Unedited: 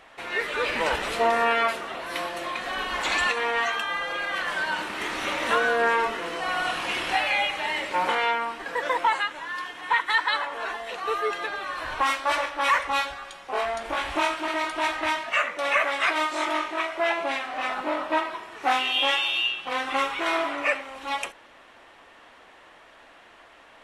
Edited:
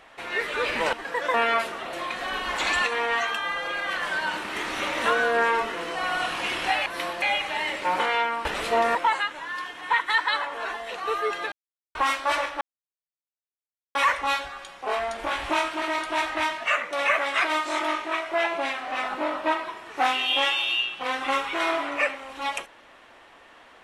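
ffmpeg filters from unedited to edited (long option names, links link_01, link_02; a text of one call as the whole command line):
ffmpeg -i in.wav -filter_complex "[0:a]asplit=11[link_01][link_02][link_03][link_04][link_05][link_06][link_07][link_08][link_09][link_10][link_11];[link_01]atrim=end=0.932[link_12];[link_02]atrim=start=8.538:end=8.952[link_13];[link_03]atrim=start=1.428:end=2.022[link_14];[link_04]atrim=start=2.378:end=7.312[link_15];[link_05]atrim=start=2.018:end=2.382[link_16];[link_06]atrim=start=7.308:end=8.542[link_17];[link_07]atrim=start=0.928:end=1.432[link_18];[link_08]atrim=start=8.948:end=11.52,asetpts=PTS-STARTPTS,afade=type=out:start_time=2.568:duration=0.004:curve=hsin[link_19];[link_09]atrim=start=11.52:end=11.95,asetpts=PTS-STARTPTS,volume=0[link_20];[link_10]atrim=start=11.95:end=12.61,asetpts=PTS-STARTPTS,afade=type=in:duration=0.004:curve=hsin,afade=type=out:start_time=0.656:duration=0.004:curve=hsin,apad=pad_dur=1.34[link_21];[link_11]atrim=start=12.61,asetpts=PTS-STARTPTS,afade=type=in:duration=0.004:curve=hsin[link_22];[link_12][link_13]acrossfade=duration=0.004:curve1=hsin:curve2=hsin[link_23];[link_23][link_14]acrossfade=duration=0.004:curve1=hsin:curve2=hsin[link_24];[link_24][link_15]acrossfade=duration=0.004:curve1=hsin:curve2=hsin[link_25];[link_25][link_16]acrossfade=duration=0.004:curve1=hsin:curve2=hsin[link_26];[link_26][link_17]acrossfade=duration=0.004:curve1=hsin:curve2=hsin[link_27];[link_27][link_18]acrossfade=duration=0.004:curve1=hsin:curve2=hsin[link_28];[link_19][link_20][link_21][link_22]concat=n=4:v=0:a=1[link_29];[link_28][link_29]acrossfade=duration=0.004:curve1=hsin:curve2=hsin" out.wav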